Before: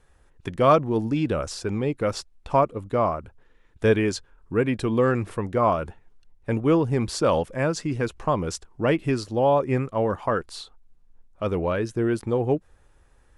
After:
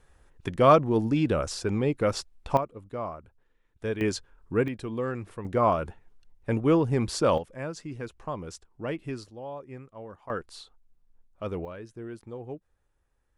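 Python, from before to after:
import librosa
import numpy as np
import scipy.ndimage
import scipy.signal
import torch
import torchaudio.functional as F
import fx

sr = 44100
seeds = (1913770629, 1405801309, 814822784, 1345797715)

y = fx.gain(x, sr, db=fx.steps((0.0, -0.5), (2.57, -11.5), (4.01, -2.5), (4.68, -10.0), (5.45, -2.0), (7.38, -11.0), (9.3, -19.0), (10.3, -7.5), (11.65, -16.0)))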